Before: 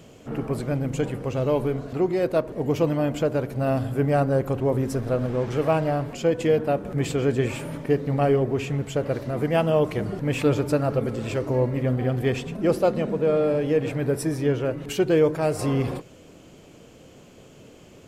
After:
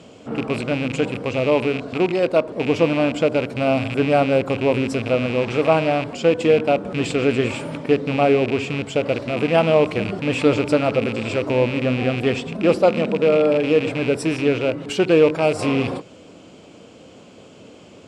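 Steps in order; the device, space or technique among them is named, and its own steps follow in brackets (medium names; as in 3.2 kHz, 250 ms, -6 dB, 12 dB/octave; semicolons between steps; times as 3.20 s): 2.11–2.61 s: bass shelf 210 Hz -3 dB; car door speaker with a rattle (rattle on loud lows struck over -28 dBFS, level -23 dBFS; cabinet simulation 110–8100 Hz, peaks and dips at 140 Hz -8 dB, 380 Hz -3 dB, 1.8 kHz -5 dB, 6.4 kHz -6 dB); trim +6 dB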